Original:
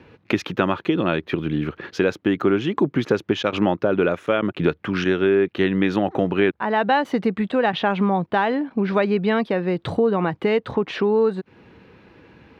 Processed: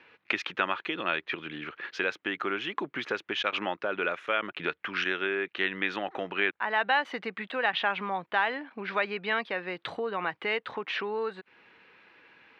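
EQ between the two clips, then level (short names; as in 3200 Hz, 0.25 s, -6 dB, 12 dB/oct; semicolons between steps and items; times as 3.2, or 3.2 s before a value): band-pass 2200 Hz, Q 1; 0.0 dB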